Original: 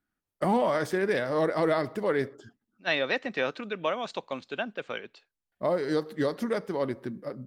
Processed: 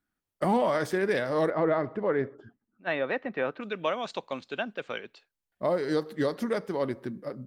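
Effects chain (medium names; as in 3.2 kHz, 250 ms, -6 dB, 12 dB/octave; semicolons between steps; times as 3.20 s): 1.50–3.61 s: low-pass 1.8 kHz 12 dB/octave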